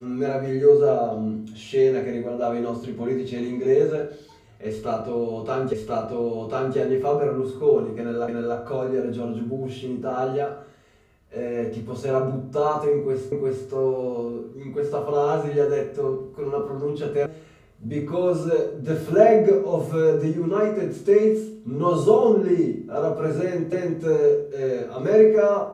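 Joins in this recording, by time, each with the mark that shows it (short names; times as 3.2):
5.73 repeat of the last 1.04 s
8.28 repeat of the last 0.29 s
13.32 repeat of the last 0.36 s
17.26 sound cut off
23.72 repeat of the last 0.3 s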